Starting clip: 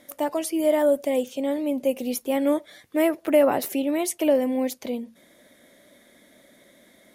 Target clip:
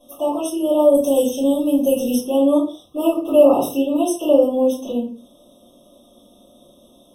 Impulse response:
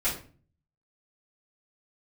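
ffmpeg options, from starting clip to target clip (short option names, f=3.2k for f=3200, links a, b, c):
-filter_complex "[0:a]asettb=1/sr,asplit=3[a][b][c];[a]atrim=end=0.944[d];[b]atrim=start=0.94:end=2.15,asetpts=PTS-STARTPTS,afade=t=in:d=0.004:c=qsin,afade=t=out:st=1.206:d=0.004:c=qsin,bass=f=250:g=6,treble=f=4k:g=13[e];[c]atrim=start=2.146[f];[d][e]acrossfade=d=0.004:c1=hsin:c2=qsin[g];[g][f]acrossfade=d=0.004:c1=qsin:c2=hsin[h];[1:a]atrim=start_sample=2205,afade=t=out:st=0.27:d=0.01,atrim=end_sample=12348[i];[h][i]afir=irnorm=-1:irlink=0,afftfilt=real='re*eq(mod(floor(b*sr/1024/1300),2),0)':imag='im*eq(mod(floor(b*sr/1024/1300),2),0)':win_size=1024:overlap=0.75,volume=-3.5dB"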